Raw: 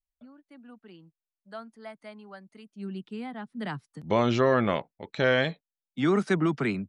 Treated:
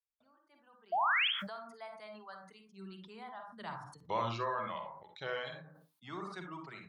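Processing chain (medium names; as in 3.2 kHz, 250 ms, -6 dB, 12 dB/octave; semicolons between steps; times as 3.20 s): Doppler pass-by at 2.19 s, 11 m/s, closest 12 m; high-pass 41 Hz; hum notches 50/100/150/200/250/300 Hz; reverb removal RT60 1.7 s; fifteen-band graphic EQ 250 Hz -11 dB, 1 kHz +10 dB, 4 kHz +8 dB; painted sound rise, 0.92–1.28 s, 640–3500 Hz -23 dBFS; on a send at -4.5 dB: reverberation RT60 0.30 s, pre-delay 42 ms; on the sum: decay stretcher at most 58 dB/s; trim -8 dB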